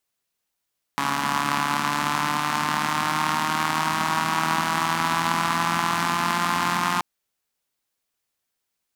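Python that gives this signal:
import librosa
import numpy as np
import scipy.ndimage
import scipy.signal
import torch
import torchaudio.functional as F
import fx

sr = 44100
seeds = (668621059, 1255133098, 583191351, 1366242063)

y = fx.engine_four_rev(sr, seeds[0], length_s=6.03, rpm=4200, resonances_hz=(230.0, 1000.0), end_rpm=5300)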